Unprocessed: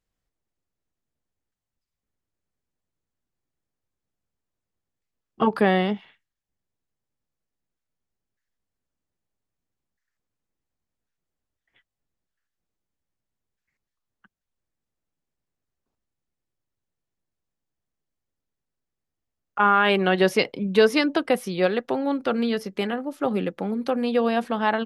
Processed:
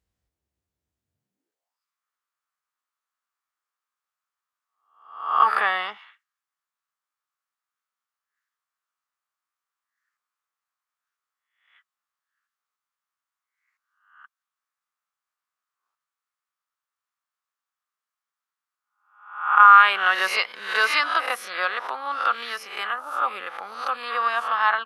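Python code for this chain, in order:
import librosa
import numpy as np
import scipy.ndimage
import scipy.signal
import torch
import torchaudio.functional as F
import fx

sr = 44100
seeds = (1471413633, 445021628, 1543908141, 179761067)

y = fx.spec_swells(x, sr, rise_s=0.59)
y = fx.filter_sweep_highpass(y, sr, from_hz=64.0, to_hz=1200.0, start_s=1.04, end_s=1.8, q=4.4)
y = y * librosa.db_to_amplitude(-2.0)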